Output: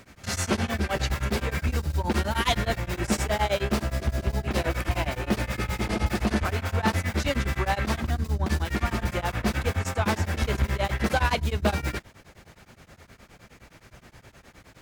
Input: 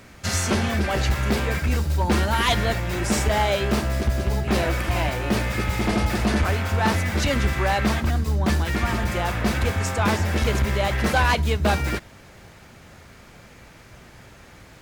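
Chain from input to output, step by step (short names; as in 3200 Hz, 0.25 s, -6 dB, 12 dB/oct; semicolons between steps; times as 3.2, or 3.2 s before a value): beating tremolo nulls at 9.6 Hz; gain -1.5 dB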